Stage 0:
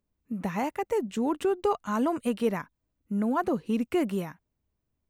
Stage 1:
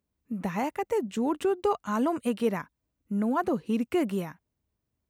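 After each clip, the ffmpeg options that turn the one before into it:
ffmpeg -i in.wav -af "highpass=43" out.wav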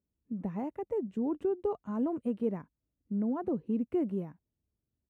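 ffmpeg -i in.wav -af "firequalizer=gain_entry='entry(340,0);entry(730,-7);entry(1300,-14);entry(4500,-24)':delay=0.05:min_phase=1,volume=-3.5dB" out.wav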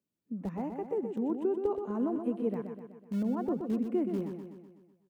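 ffmpeg -i in.wav -filter_complex "[0:a]acrossover=split=120|530[link_01][link_02][link_03];[link_01]acrusher=bits=7:mix=0:aa=0.000001[link_04];[link_04][link_02][link_03]amix=inputs=3:normalize=0,aecho=1:1:125|250|375|500|625|750|875:0.447|0.246|0.135|0.0743|0.0409|0.0225|0.0124" out.wav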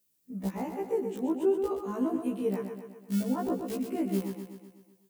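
ffmpeg -i in.wav -af "crystalizer=i=5.5:c=0,afftfilt=real='re*1.73*eq(mod(b,3),0)':imag='im*1.73*eq(mod(b,3),0)':win_size=2048:overlap=0.75,volume=3.5dB" out.wav

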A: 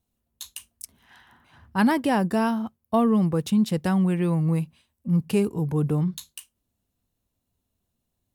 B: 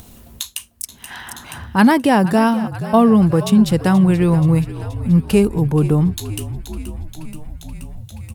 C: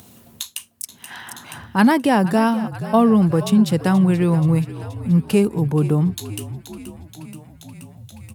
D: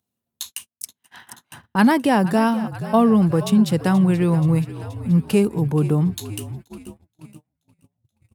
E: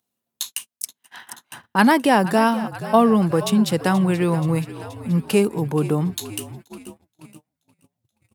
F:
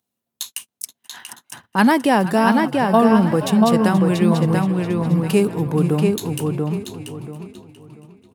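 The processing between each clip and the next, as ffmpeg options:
ffmpeg -i in.wav -filter_complex "[0:a]asplit=8[link_01][link_02][link_03][link_04][link_05][link_06][link_07][link_08];[link_02]adelay=478,afreqshift=-48,volume=-15dB[link_09];[link_03]adelay=956,afreqshift=-96,volume=-19dB[link_10];[link_04]adelay=1434,afreqshift=-144,volume=-23dB[link_11];[link_05]adelay=1912,afreqshift=-192,volume=-27dB[link_12];[link_06]adelay=2390,afreqshift=-240,volume=-31.1dB[link_13];[link_07]adelay=2868,afreqshift=-288,volume=-35.1dB[link_14];[link_08]adelay=3346,afreqshift=-336,volume=-39.1dB[link_15];[link_01][link_09][link_10][link_11][link_12][link_13][link_14][link_15]amix=inputs=8:normalize=0,acompressor=mode=upward:threshold=-29dB:ratio=2.5,volume=8.5dB" out.wav
ffmpeg -i in.wav -af "highpass=frequency=100:width=0.5412,highpass=frequency=100:width=1.3066,volume=-2.5dB" out.wav
ffmpeg -i in.wav -af "agate=range=-34dB:threshold=-34dB:ratio=16:detection=peak,volume=-1dB" out.wav
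ffmpeg -i in.wav -af "highpass=frequency=340:poles=1,volume=3.5dB" out.wav
ffmpeg -i in.wav -filter_complex "[0:a]lowshelf=frequency=430:gain=3,asplit=2[link_01][link_02];[link_02]adelay=686,lowpass=frequency=4500:poles=1,volume=-3dB,asplit=2[link_03][link_04];[link_04]adelay=686,lowpass=frequency=4500:poles=1,volume=0.27,asplit=2[link_05][link_06];[link_06]adelay=686,lowpass=frequency=4500:poles=1,volume=0.27,asplit=2[link_07][link_08];[link_08]adelay=686,lowpass=frequency=4500:poles=1,volume=0.27[link_09];[link_03][link_05][link_07][link_09]amix=inputs=4:normalize=0[link_10];[link_01][link_10]amix=inputs=2:normalize=0,volume=-1dB" out.wav

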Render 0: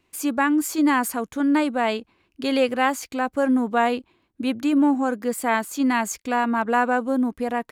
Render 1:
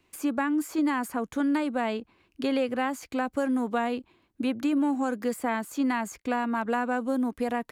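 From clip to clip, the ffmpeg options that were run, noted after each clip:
ffmpeg -i in.wav -filter_complex "[0:a]acrossover=split=270|2200[link_01][link_02][link_03];[link_01]acompressor=threshold=-33dB:ratio=4[link_04];[link_02]acompressor=threshold=-27dB:ratio=4[link_05];[link_03]acompressor=threshold=-43dB:ratio=4[link_06];[link_04][link_05][link_06]amix=inputs=3:normalize=0" out.wav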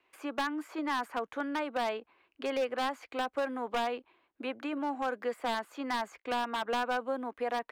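ffmpeg -i in.wav -filter_complex "[0:a]acrossover=split=410 3400:gain=0.0891 1 0.112[link_01][link_02][link_03];[link_01][link_02][link_03]amix=inputs=3:normalize=0,aeval=exprs='0.0596*(abs(mod(val(0)/0.0596+3,4)-2)-1)':channel_layout=same" out.wav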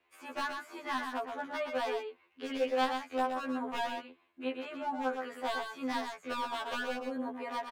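ffmpeg -i in.wav -af "aecho=1:1:122:0.501,afftfilt=real='re*2*eq(mod(b,4),0)':imag='im*2*eq(mod(b,4),0)':win_size=2048:overlap=0.75" out.wav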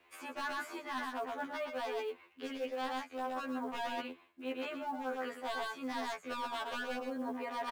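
ffmpeg -i in.wav -af "acrusher=bits=8:mode=log:mix=0:aa=0.000001,areverse,acompressor=threshold=-44dB:ratio=6,areverse,volume=7.5dB" out.wav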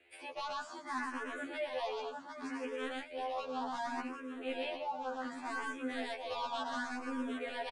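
ffmpeg -i in.wav -filter_complex "[0:a]asplit=2[link_01][link_02];[link_02]aecho=0:1:753|1506|2259|3012:0.473|0.18|0.0683|0.026[link_03];[link_01][link_03]amix=inputs=2:normalize=0,aresample=22050,aresample=44100,asplit=2[link_04][link_05];[link_05]afreqshift=0.67[link_06];[link_04][link_06]amix=inputs=2:normalize=1,volume=2dB" out.wav

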